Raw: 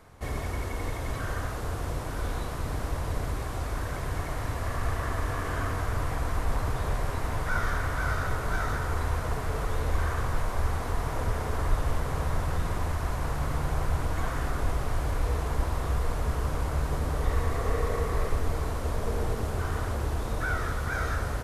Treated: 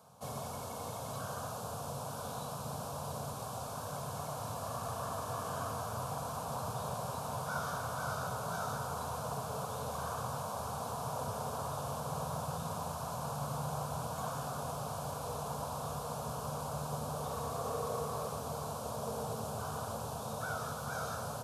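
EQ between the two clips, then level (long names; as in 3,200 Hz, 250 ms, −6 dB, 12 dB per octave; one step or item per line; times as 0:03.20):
high-pass filter 140 Hz 24 dB per octave
parametric band 1,500 Hz −3.5 dB 2.9 octaves
phaser with its sweep stopped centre 810 Hz, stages 4
+1.0 dB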